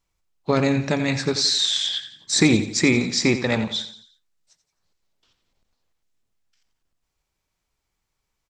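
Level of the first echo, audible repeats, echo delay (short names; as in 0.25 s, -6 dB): -12.0 dB, 4, 87 ms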